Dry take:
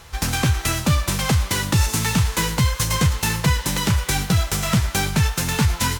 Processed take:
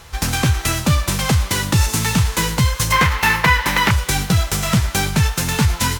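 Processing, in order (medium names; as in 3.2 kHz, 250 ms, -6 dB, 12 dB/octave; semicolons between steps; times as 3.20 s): 2.92–3.91 s: graphic EQ 125/1000/2000/8000 Hz -6/+7/+10/-7 dB; trim +2.5 dB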